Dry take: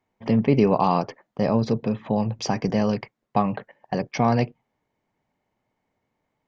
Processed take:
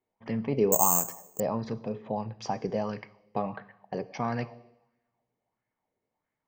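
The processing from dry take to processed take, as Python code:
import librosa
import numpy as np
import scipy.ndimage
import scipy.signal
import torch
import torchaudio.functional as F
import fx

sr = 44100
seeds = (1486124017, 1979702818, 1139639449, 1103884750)

y = fx.rev_double_slope(x, sr, seeds[0], early_s=0.86, late_s=2.2, knee_db=-25, drr_db=13.5)
y = fx.resample_bad(y, sr, factor=6, down='filtered', up='zero_stuff', at=(0.72, 1.4))
y = fx.bell_lfo(y, sr, hz=1.5, low_hz=400.0, high_hz=1800.0, db=10)
y = F.gain(torch.from_numpy(y), -12.0).numpy()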